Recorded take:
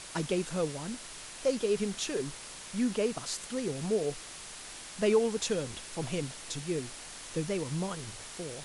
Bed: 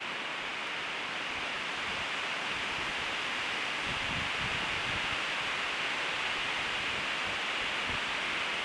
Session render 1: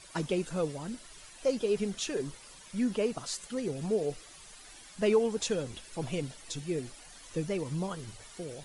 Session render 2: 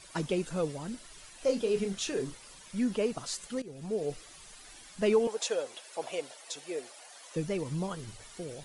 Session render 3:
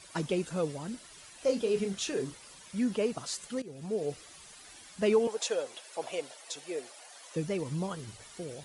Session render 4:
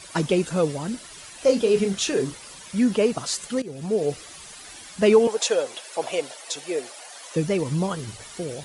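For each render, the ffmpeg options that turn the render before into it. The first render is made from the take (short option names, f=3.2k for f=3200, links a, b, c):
-af "afftdn=nr=12:nf=-46"
-filter_complex "[0:a]asettb=1/sr,asplit=3[a][b][c];[a]atrim=end=1.384[d];[b]atrim=start=1.38:end=2.34,asetpts=PTS-STARTPTS,afade=t=in:d=0.004:c=qsin,afade=t=out:st=0.956:d=0.004:c=qsin,asplit=2[e][f];[f]adelay=31,volume=-8.5dB[g];[e][g]amix=inputs=2:normalize=0,atrim=end_sample=42336[h];[c]atrim=start=2.336[i];[d][h]acrossfade=d=0.004:c1=hsin:c2=qsin[j];[j][i]acrossfade=d=0.004:c1=qsin:c2=hsin,asettb=1/sr,asplit=3[k][l][m];[k]atrim=end=5.274[n];[l]atrim=start=5.27:end=7.36,asetpts=PTS-STARTPTS,afade=t=in:d=0.004:c=qsin,afade=t=out:st=2.086:d=0.004:c=qsin,highpass=f=590:t=q:w=1.8[o];[m]atrim=start=7.356[p];[n][o]acrossfade=d=0.004:c1=hsin:c2=qsin[q];[q][p]acrossfade=d=0.004:c1=qsin:c2=hsin,asplit=2[r][s];[r]atrim=end=3.62,asetpts=PTS-STARTPTS,afade=t=out:st=3.616:d=0.004:c=hsin:silence=0.158489[t];[s]atrim=start=3.62,asetpts=PTS-STARTPTS,afade=t=in:d=0.53:silence=0.158489[u];[t][u]concat=n=2:v=0:a=1"
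-af "highpass=53"
-af "volume=9.5dB"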